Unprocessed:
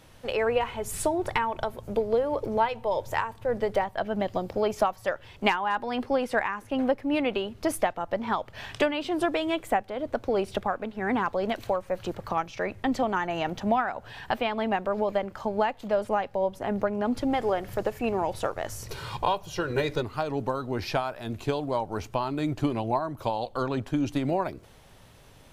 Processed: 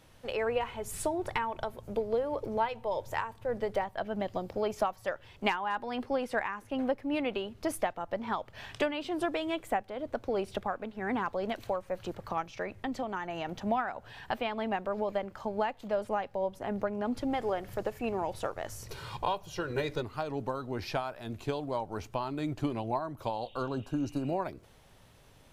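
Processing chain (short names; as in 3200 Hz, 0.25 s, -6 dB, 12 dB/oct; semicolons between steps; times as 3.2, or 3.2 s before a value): 12.62–13.49 compressor 2:1, threshold -28 dBFS, peak gain reduction 4.5 dB; 23.45–24.29 spectral repair 1700–3800 Hz both; gain -5.5 dB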